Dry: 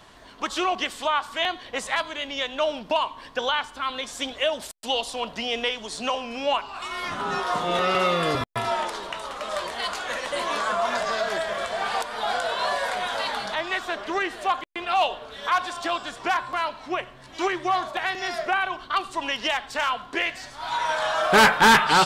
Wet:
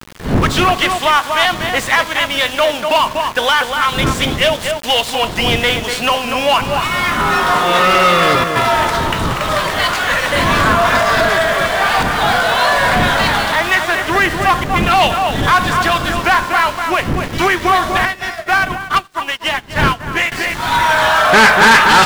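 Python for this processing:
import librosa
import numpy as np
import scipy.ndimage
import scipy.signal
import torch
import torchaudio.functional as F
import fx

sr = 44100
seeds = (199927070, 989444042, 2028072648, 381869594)

y = fx.cvsd(x, sr, bps=64000)
y = fx.dmg_wind(y, sr, seeds[0], corner_hz=240.0, level_db=-34.0)
y = fx.peak_eq(y, sr, hz=1900.0, db=7.0, octaves=1.7)
y = fx.echo_filtered(y, sr, ms=242, feedback_pct=21, hz=2100.0, wet_db=-6.0)
y = np.where(np.abs(y) >= 10.0 ** (-34.5 / 20.0), y, 0.0)
y = fx.leveller(y, sr, passes=3)
y = fx.upward_expand(y, sr, threshold_db=-25.0, expansion=2.5, at=(18.05, 20.32))
y = y * 10.0 ** (-1.5 / 20.0)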